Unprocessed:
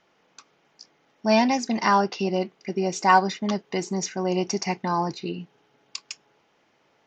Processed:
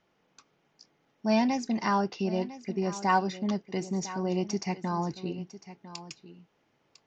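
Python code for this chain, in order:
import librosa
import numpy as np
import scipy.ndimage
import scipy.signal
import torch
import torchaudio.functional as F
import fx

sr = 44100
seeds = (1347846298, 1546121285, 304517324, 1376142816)

y = fx.low_shelf(x, sr, hz=240.0, db=10.0)
y = y + 10.0 ** (-15.0 / 20.0) * np.pad(y, (int(1002 * sr / 1000.0), 0))[:len(y)]
y = y * librosa.db_to_amplitude(-8.5)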